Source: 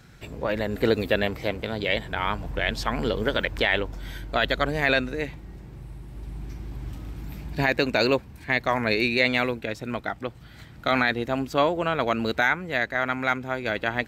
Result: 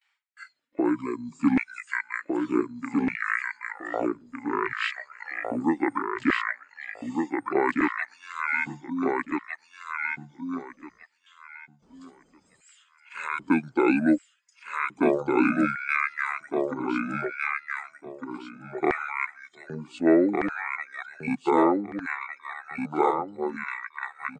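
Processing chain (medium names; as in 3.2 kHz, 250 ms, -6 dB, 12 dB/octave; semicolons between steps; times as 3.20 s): spectral noise reduction 12 dB; LFO high-pass square 1.1 Hz 500–3200 Hz; gate with hold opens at -56 dBFS; reverb removal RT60 1.5 s; feedback delay 869 ms, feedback 18%, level -3.5 dB; speed mistake 78 rpm record played at 45 rpm; trim -3 dB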